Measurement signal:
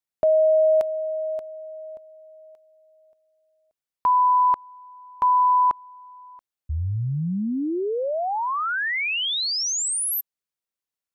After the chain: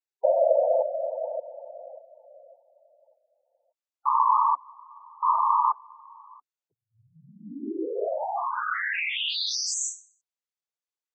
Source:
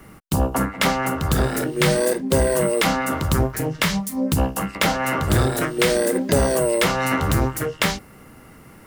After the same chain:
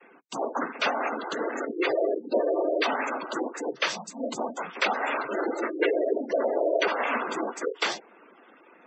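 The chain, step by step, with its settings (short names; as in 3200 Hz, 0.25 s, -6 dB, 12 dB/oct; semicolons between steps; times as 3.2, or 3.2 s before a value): HPF 320 Hz 24 dB/oct; noise vocoder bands 16; spectral gate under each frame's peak -15 dB strong; gain -3.5 dB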